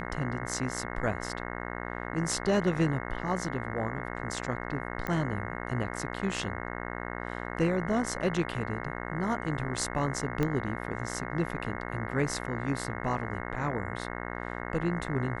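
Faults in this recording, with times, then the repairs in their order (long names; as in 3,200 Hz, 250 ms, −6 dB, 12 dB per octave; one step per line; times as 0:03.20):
mains buzz 60 Hz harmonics 36 −37 dBFS
0:05.07: click −19 dBFS
0:10.43: click −16 dBFS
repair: click removal
hum removal 60 Hz, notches 36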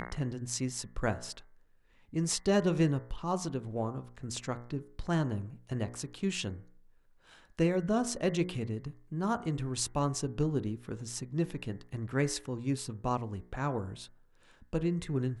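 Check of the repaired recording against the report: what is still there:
0:10.43: click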